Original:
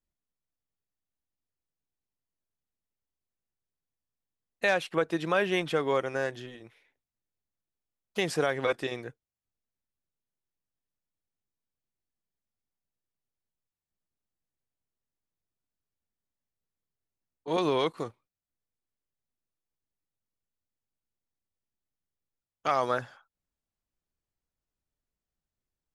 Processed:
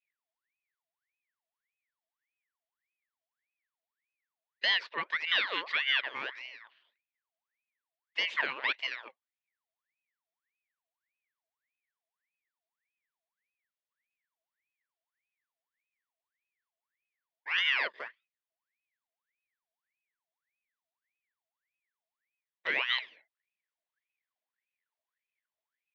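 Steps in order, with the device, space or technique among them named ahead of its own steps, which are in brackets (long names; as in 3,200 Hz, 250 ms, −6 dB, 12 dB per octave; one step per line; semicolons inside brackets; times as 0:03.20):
voice changer toy (ring modulator whose carrier an LFO sweeps 1,600 Hz, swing 60%, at 1.7 Hz; loudspeaker in its box 590–4,100 Hz, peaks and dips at 770 Hz −9 dB, 1,300 Hz −8 dB, 1,900 Hz +4 dB, 3,300 Hz +3 dB)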